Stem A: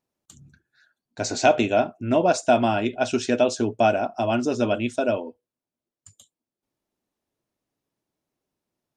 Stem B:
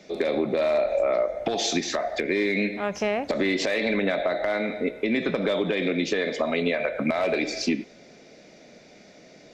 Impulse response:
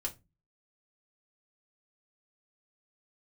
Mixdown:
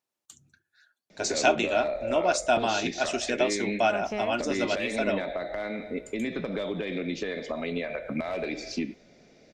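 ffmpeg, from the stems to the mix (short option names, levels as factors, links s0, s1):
-filter_complex "[0:a]highpass=f=1100:p=1,volume=0.841,asplit=2[s0][s1];[s1]volume=0.237[s2];[1:a]adelay=1100,volume=0.398[s3];[2:a]atrim=start_sample=2205[s4];[s2][s4]afir=irnorm=-1:irlink=0[s5];[s0][s3][s5]amix=inputs=3:normalize=0,lowshelf=f=120:g=11.5"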